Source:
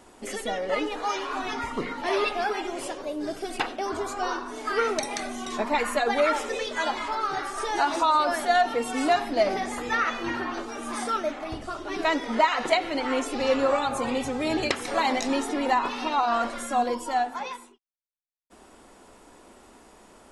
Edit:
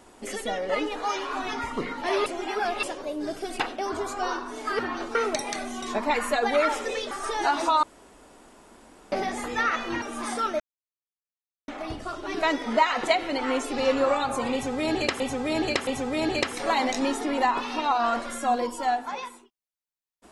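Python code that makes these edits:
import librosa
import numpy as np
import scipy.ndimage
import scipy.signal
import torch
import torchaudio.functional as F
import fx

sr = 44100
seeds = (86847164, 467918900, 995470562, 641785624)

y = fx.edit(x, sr, fx.reverse_span(start_s=2.26, length_s=0.57),
    fx.cut(start_s=6.75, length_s=0.7),
    fx.room_tone_fill(start_s=8.17, length_s=1.29),
    fx.move(start_s=10.36, length_s=0.36, to_s=4.79),
    fx.insert_silence(at_s=11.3, length_s=1.08),
    fx.repeat(start_s=14.15, length_s=0.67, count=3), tone=tone)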